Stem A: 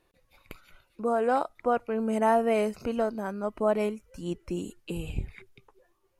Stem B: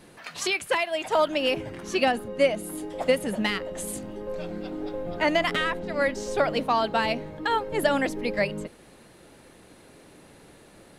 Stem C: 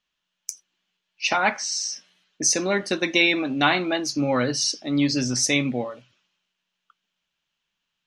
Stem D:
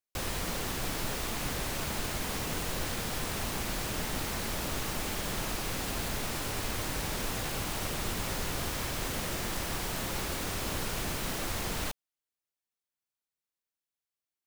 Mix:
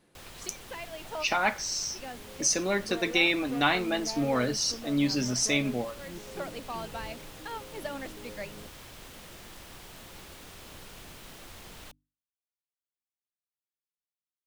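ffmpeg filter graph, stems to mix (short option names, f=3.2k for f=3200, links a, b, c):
-filter_complex "[0:a]asoftclip=type=tanh:threshold=-25.5dB,adelay=1850,volume=-10.5dB[a];[1:a]volume=-14.5dB[b];[2:a]volume=-5dB,asplit=2[c][d];[3:a]equalizer=f=3.2k:t=o:w=0.77:g=3.5,bandreject=f=50:t=h:w=6,bandreject=f=100:t=h:w=6,bandreject=f=150:t=h:w=6,bandreject=f=200:t=h:w=6,bandreject=f=250:t=h:w=6,bandreject=f=300:t=h:w=6,volume=-13.5dB[e];[d]apad=whole_len=484471[f];[b][f]sidechaincompress=threshold=-43dB:ratio=8:attack=16:release=314[g];[a][g][c][e]amix=inputs=4:normalize=0"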